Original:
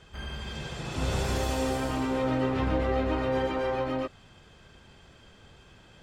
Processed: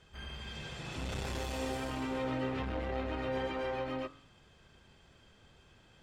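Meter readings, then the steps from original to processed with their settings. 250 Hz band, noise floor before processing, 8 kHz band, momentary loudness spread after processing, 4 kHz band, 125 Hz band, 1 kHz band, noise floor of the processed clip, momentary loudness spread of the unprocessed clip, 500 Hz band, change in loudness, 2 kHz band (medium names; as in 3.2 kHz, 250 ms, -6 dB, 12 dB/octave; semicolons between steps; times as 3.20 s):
-8.5 dB, -55 dBFS, -8.5 dB, 8 LU, -5.5 dB, -9.0 dB, -8.0 dB, -63 dBFS, 10 LU, -8.0 dB, -8.0 dB, -5.5 dB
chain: dynamic bell 2.5 kHz, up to +4 dB, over -51 dBFS, Q 0.89; de-hum 45.19 Hz, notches 36; transformer saturation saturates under 290 Hz; trim -7 dB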